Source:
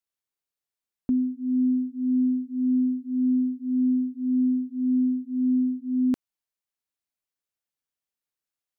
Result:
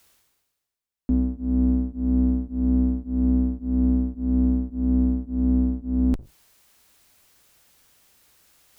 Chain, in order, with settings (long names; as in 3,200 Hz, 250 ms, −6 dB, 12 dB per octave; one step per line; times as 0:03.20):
sub-octave generator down 2 octaves, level 0 dB
reversed playback
upward compression, threshold −34 dBFS
reversed playback